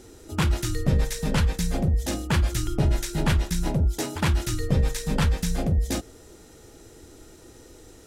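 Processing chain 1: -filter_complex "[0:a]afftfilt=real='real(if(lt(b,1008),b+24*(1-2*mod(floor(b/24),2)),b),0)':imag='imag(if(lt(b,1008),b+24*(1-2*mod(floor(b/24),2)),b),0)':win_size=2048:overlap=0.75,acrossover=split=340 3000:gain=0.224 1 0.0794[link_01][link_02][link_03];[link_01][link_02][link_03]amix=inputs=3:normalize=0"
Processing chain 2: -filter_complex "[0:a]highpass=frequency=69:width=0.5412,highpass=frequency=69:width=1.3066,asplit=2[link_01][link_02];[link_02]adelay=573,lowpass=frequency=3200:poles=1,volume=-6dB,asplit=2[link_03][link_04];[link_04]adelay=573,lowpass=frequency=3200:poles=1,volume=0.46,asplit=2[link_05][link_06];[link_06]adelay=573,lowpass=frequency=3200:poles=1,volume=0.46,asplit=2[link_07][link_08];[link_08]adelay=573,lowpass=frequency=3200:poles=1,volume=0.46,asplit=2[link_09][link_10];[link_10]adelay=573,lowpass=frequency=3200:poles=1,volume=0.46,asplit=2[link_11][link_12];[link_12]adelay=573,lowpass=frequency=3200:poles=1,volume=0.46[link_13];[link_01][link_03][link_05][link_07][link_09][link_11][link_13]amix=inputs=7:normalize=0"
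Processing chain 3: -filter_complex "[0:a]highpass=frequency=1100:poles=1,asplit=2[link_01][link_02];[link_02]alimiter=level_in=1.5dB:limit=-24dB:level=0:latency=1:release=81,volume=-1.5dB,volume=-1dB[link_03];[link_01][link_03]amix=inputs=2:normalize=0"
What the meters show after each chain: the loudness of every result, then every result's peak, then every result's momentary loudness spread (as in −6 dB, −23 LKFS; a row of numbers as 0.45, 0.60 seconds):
−24.5, −26.0, −30.0 LKFS; −10.0, −10.0, −13.0 dBFS; 3, 14, 19 LU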